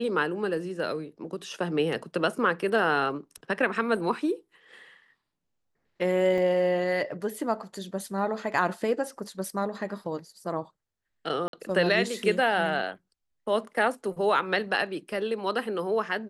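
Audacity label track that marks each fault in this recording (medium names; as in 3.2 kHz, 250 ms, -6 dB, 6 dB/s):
6.380000	6.380000	dropout 2.3 ms
11.480000	11.530000	dropout 52 ms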